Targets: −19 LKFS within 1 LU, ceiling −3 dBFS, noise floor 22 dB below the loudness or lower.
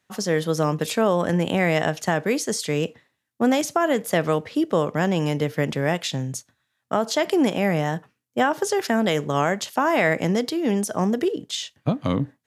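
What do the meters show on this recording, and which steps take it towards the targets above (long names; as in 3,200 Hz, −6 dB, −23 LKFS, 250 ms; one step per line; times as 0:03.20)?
integrated loudness −23.0 LKFS; sample peak −8.0 dBFS; target loudness −19.0 LKFS
→ level +4 dB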